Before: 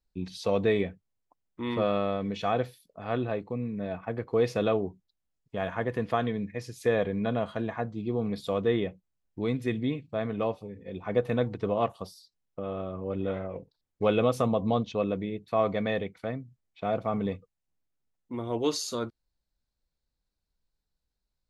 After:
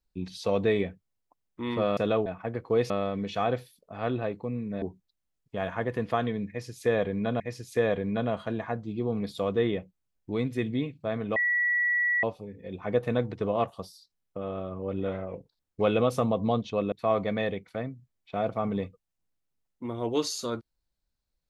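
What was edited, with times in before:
1.97–3.89 s: swap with 4.53–4.82 s
6.49–7.40 s: loop, 2 plays
10.45 s: add tone 1.94 kHz -22.5 dBFS 0.87 s
15.14–15.41 s: delete

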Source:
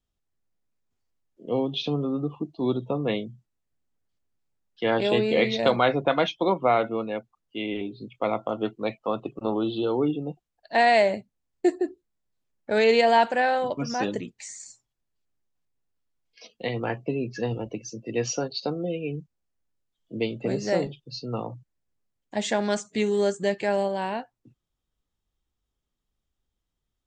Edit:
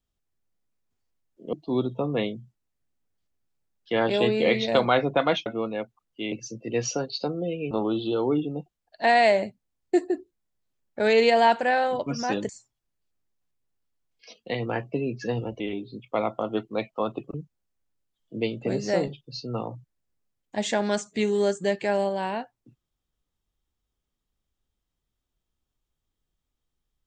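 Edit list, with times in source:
1.53–2.44 s: delete
6.37–6.82 s: delete
7.68–9.42 s: swap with 17.74–19.13 s
14.20–14.63 s: delete

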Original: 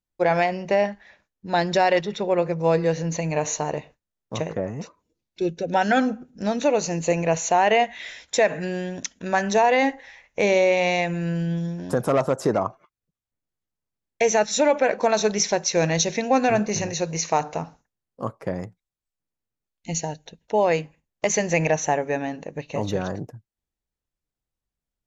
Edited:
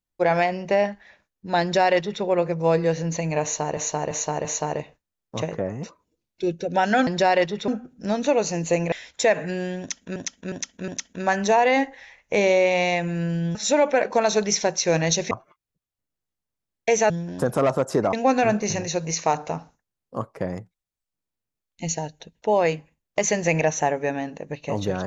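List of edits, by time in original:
1.62–2.23 s: copy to 6.05 s
3.43–3.77 s: loop, 4 plays
7.29–8.06 s: delete
8.94–9.30 s: loop, 4 plays
11.61–12.64 s: swap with 14.43–16.19 s

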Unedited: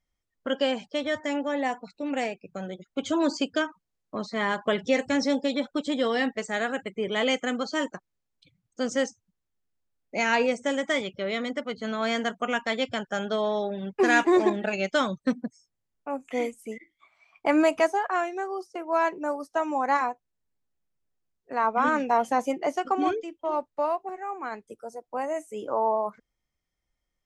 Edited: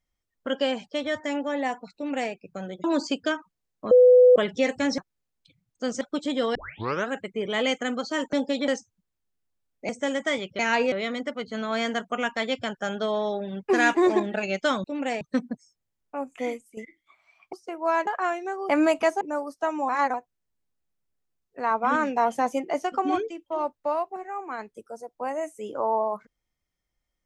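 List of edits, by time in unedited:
1.95–2.32 s: copy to 15.14 s
2.84–3.14 s: delete
4.21–4.66 s: bleep 499 Hz -10.5 dBFS
5.28–5.63 s: swap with 7.95–8.98 s
6.17 s: tape start 0.53 s
10.19–10.52 s: move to 11.22 s
16.31–16.70 s: fade out, to -12.5 dB
17.46–17.98 s: swap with 18.60–19.14 s
19.82–20.07 s: reverse

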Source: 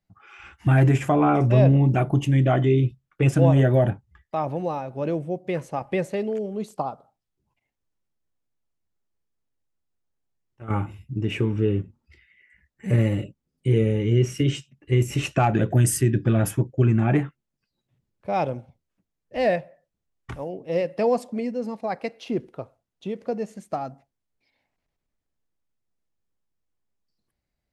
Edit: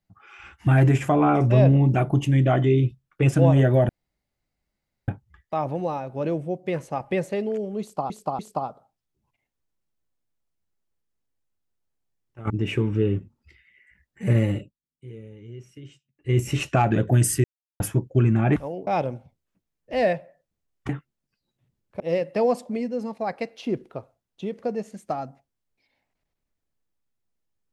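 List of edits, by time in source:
3.89 s: insert room tone 1.19 s
6.62–6.91 s: loop, 3 plays
10.73–11.13 s: delete
13.16–15.01 s: dip -21 dB, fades 0.23 s
16.07–16.43 s: mute
17.19–18.30 s: swap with 20.32–20.63 s

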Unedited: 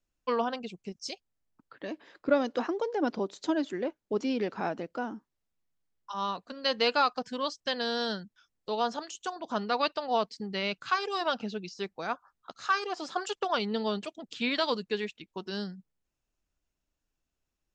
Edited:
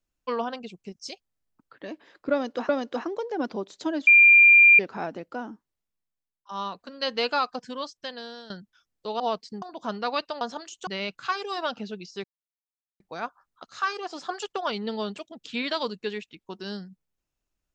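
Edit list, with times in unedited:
2.32–2.69 s: loop, 2 plays
3.70–4.42 s: bleep 2.39 kHz -10.5 dBFS
5.15–6.12 s: fade out, to -21 dB
7.25–8.13 s: fade out, to -16.5 dB
8.83–9.29 s: swap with 10.08–10.50 s
11.87 s: insert silence 0.76 s

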